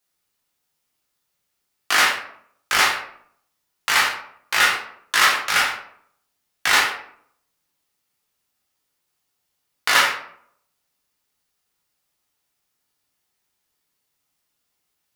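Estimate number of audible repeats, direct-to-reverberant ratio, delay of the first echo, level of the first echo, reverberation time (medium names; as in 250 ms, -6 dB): no echo, -4.0 dB, no echo, no echo, 0.65 s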